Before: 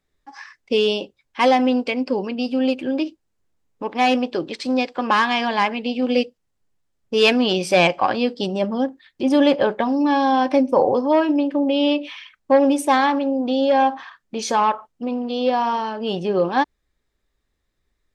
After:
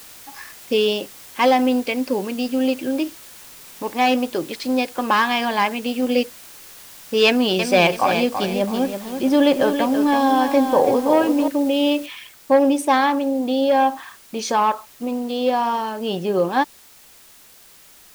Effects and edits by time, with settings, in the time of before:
7.26–11.48 lo-fi delay 0.33 s, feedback 35%, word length 6-bit, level -7 dB
12.06 noise floor step -42 dB -48 dB

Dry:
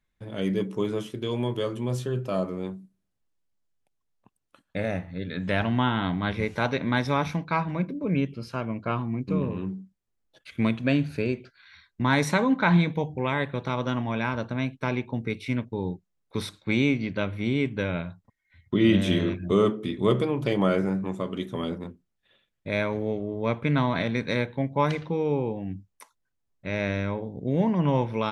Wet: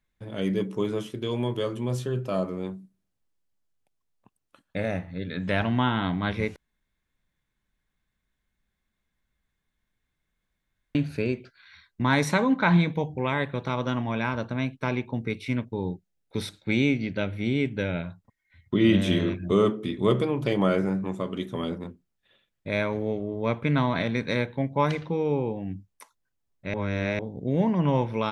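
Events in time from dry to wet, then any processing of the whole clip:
6.56–10.95 room tone
15.92–18.04 bell 1100 Hz -15 dB 0.21 oct
26.74–27.19 reverse

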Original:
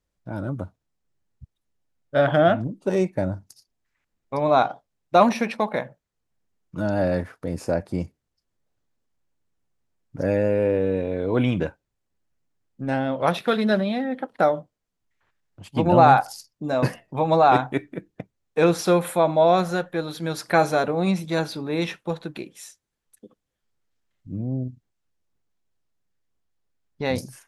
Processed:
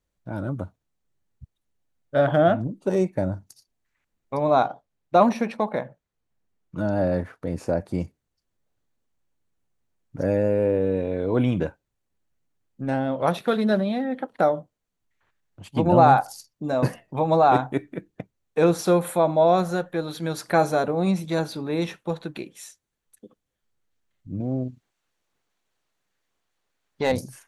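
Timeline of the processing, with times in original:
4.67–7.77 high shelf 5400 Hz -6.5 dB
24.4–27.12 overdrive pedal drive 16 dB, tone 5600 Hz, clips at -9.5 dBFS
whole clip: notch 5100 Hz, Q 15; dynamic EQ 2500 Hz, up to -6 dB, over -37 dBFS, Q 0.75

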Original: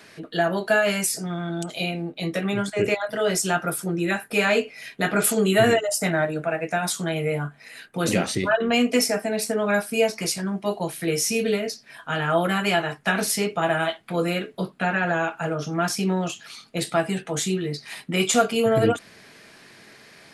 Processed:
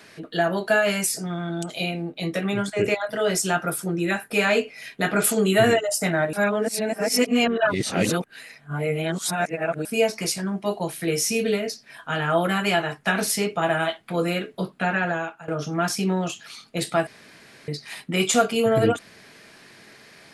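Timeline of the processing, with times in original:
6.33–9.85 reverse
15–15.48 fade out, to -18.5 dB
17.07–17.68 room tone

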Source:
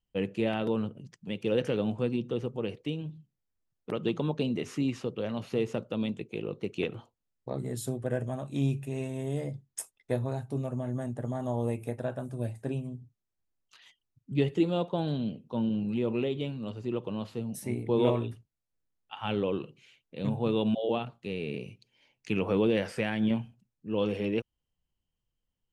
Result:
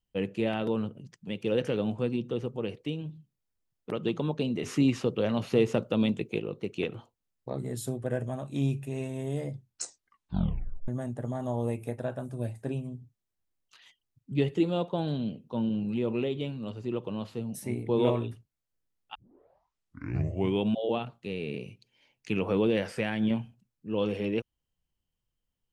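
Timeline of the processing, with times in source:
4.63–6.39 gain +5.5 dB
9.55 tape stop 1.33 s
19.15 tape start 1.55 s

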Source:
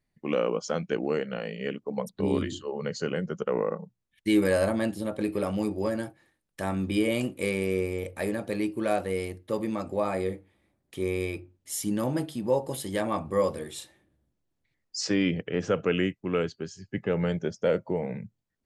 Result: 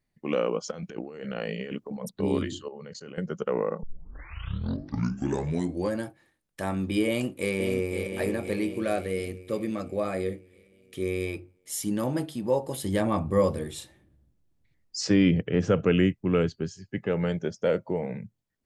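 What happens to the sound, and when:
0.71–2.11 negative-ratio compressor -36 dBFS
2.68–3.18 level quantiser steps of 21 dB
3.83 tape start 2.15 s
7.07–8.07 echo throw 0.52 s, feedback 55%, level -7 dB
8.8–11.27 bell 910 Hz -12.5 dB 0.35 oct
12.83–16.73 low shelf 220 Hz +11.5 dB

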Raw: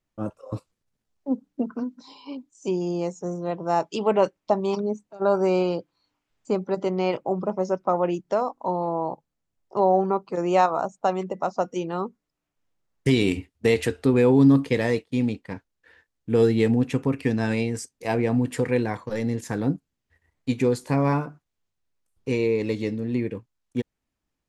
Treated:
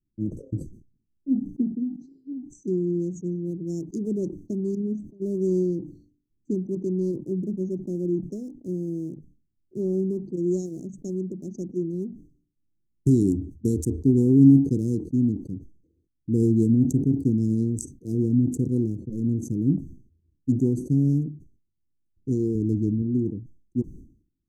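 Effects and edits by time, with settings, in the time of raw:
22.55–23.02 low shelf 110 Hz +11 dB
whole clip: Wiener smoothing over 25 samples; Chebyshev band-stop 350–6300 Hz, order 4; sustainer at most 110 dB/s; gain +3 dB

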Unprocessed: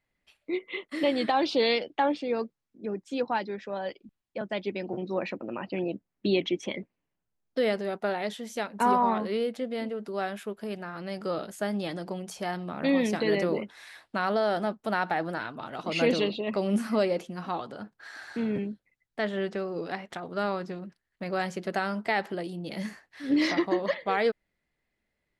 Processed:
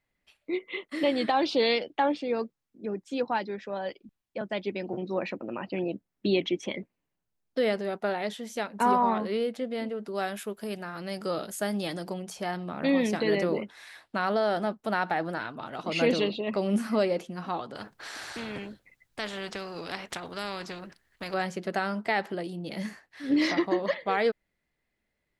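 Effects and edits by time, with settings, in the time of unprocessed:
10.15–12.14 high shelf 5400 Hz +11 dB
17.75–21.34 spectral compressor 2:1

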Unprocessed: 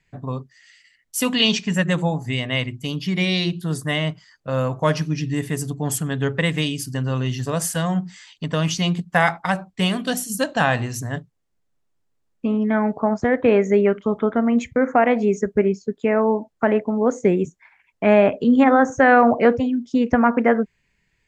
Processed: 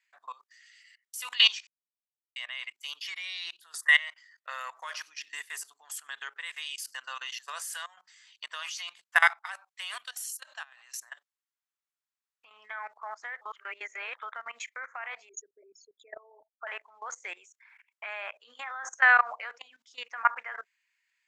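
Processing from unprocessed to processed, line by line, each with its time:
1.67–2.36 mute
3.82–4.84 bell 1900 Hz +13.5 dB 0.2 oct
7.53–7.97 fade out, to -13 dB
10.01–12.51 compressor 20:1, threshold -29 dBFS
13.41–14.17 reverse
15.29–16.67 formant sharpening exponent 3
whole clip: HPF 1100 Hz 24 dB/oct; level quantiser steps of 20 dB; gain +2 dB

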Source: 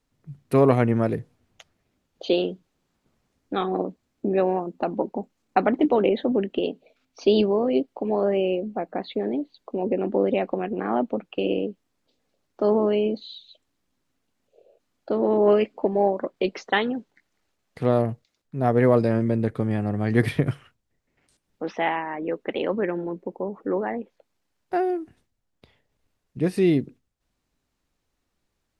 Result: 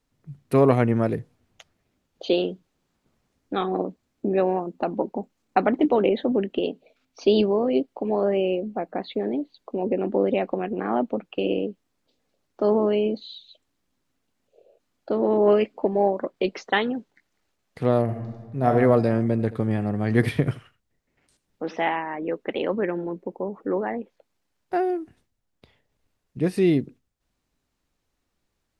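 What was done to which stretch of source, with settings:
18.04–18.69 reverb throw, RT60 1.4 s, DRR 0.5 dB
19.31–21.94 echo 82 ms -17 dB

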